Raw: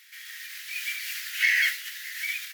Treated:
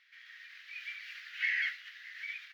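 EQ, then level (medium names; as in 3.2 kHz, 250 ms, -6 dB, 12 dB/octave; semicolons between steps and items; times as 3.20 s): distance through air 280 m; -6.5 dB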